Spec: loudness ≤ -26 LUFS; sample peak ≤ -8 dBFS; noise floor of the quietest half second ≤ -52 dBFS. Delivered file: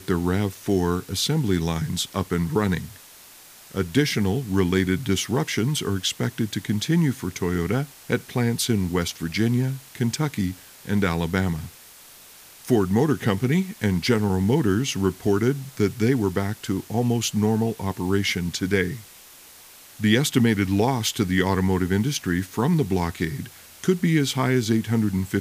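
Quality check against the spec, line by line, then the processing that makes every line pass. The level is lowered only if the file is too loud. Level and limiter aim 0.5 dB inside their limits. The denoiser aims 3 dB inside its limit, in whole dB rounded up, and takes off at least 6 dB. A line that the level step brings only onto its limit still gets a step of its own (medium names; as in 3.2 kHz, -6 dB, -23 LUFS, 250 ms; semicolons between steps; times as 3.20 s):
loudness -23.5 LUFS: fail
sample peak -4.0 dBFS: fail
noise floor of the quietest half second -47 dBFS: fail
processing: noise reduction 6 dB, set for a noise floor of -47 dBFS; trim -3 dB; peak limiter -8.5 dBFS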